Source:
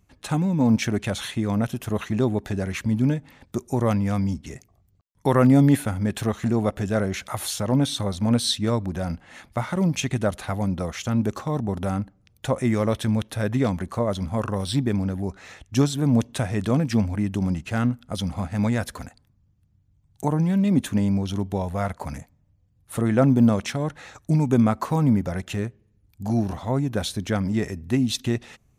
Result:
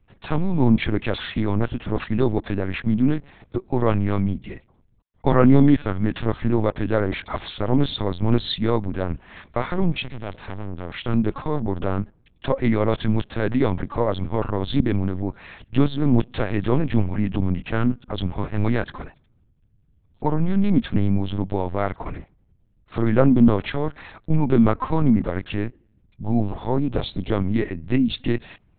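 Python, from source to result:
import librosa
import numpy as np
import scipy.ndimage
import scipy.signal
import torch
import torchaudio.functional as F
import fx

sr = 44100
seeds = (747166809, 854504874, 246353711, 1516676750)

y = fx.tube_stage(x, sr, drive_db=30.0, bias=0.75, at=(10.01, 10.92), fade=0.02)
y = fx.peak_eq(y, sr, hz=1700.0, db=-9.0, octaves=0.61, at=(26.23, 27.41))
y = fx.lpc_vocoder(y, sr, seeds[0], excitation='pitch_kept', order=8)
y = F.gain(torch.from_numpy(y), 2.5).numpy()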